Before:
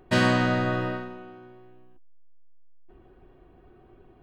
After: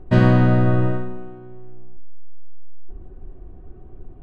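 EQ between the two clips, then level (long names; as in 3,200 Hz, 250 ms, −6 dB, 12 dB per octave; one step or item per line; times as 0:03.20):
spectral tilt −4 dB per octave
high-shelf EQ 8,500 Hz −5 dB
mains-hum notches 50/100/150/200/250/300/350/400/450/500 Hz
+1.0 dB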